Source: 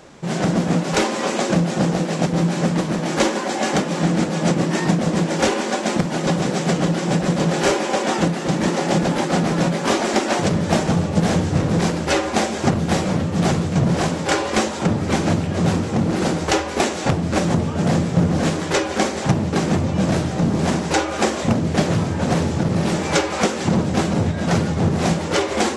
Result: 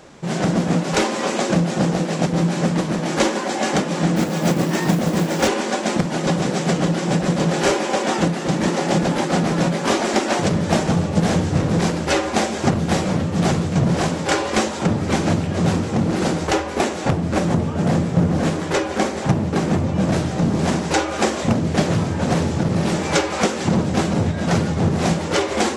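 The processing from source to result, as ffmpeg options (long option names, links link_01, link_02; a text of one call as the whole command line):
ffmpeg -i in.wav -filter_complex "[0:a]asettb=1/sr,asplit=3[link_01][link_02][link_03];[link_01]atrim=end=4.164[link_04];[link_02]atrim=start=4.16:end=5.48,asetpts=PTS-STARTPTS,afade=type=in:duration=0.004:curve=qsin,afade=type=out:start_time=1.316:duration=0.004:curve=qsin,acrusher=bits=5:mode=log:mix=0:aa=0.000001[link_05];[link_03]atrim=start=5.476[link_06];[link_04][link_05]acrossfade=duration=0.004:curve1=hsin:curve2=qsin[link_07];[link_07][link_06]acrossfade=duration=0.004:curve1=qsin:curve2=hsin,asettb=1/sr,asplit=3[link_08][link_09][link_10];[link_08]atrim=end=16.474[link_11];[link_09]atrim=start=16.47:end=20.13,asetpts=PTS-STARTPTS,afade=type=in:duration=0.004:curve=qsin,afade=type=out:start_time=3.656:duration=0.004:curve=qsin,equalizer=frequency=5600:width_type=o:width=2.6:gain=-4[link_12];[link_10]atrim=start=20.126[link_13];[link_11][link_12]acrossfade=duration=0.004:curve1=hsin:curve2=qsin[link_14];[link_14][link_13]acrossfade=duration=0.004:curve1=qsin:curve2=hsin" out.wav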